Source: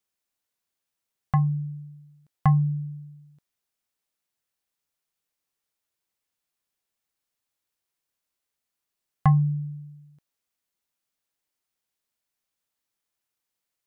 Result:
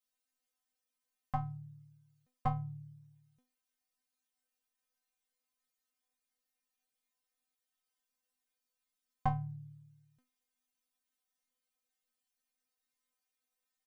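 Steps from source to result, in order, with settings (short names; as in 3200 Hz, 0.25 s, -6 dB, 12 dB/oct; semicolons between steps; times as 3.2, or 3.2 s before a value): harmoniser -5 st -7 dB; metallic resonator 250 Hz, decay 0.3 s, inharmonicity 0.002; gain +8 dB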